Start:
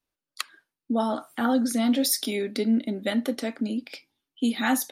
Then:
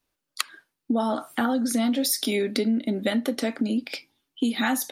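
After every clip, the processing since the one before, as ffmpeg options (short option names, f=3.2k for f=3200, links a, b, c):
-af "acompressor=threshold=-28dB:ratio=6,volume=7dB"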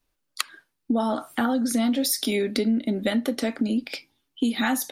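-af "lowshelf=f=63:g=11.5"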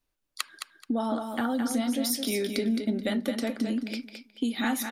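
-af "aecho=1:1:215|430|645:0.473|0.0946|0.0189,volume=-5dB"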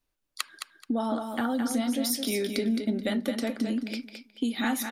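-af anull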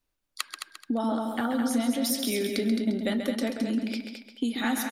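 -filter_complex "[0:a]asplit=2[a][b];[b]adelay=134.1,volume=-7dB,highshelf=f=4k:g=-3.02[c];[a][c]amix=inputs=2:normalize=0"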